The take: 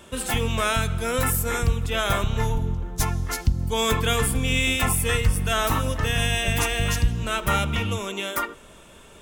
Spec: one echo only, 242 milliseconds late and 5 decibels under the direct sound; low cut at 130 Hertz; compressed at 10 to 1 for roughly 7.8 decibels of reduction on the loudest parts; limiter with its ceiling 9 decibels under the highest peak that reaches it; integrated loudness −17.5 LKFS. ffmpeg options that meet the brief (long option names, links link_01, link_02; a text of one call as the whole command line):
ffmpeg -i in.wav -af "highpass=130,acompressor=threshold=-27dB:ratio=10,alimiter=limit=-24dB:level=0:latency=1,aecho=1:1:242:0.562,volume=15dB" out.wav